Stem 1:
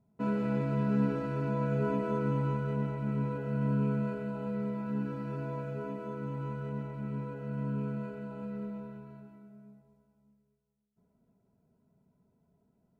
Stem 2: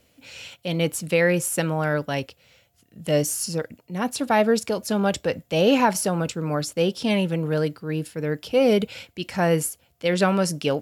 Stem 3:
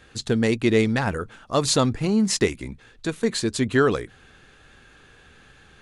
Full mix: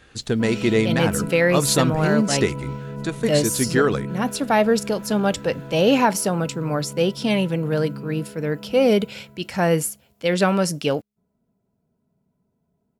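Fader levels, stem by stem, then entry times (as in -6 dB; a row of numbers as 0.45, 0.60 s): 0.0, +1.5, 0.0 dB; 0.20, 0.20, 0.00 s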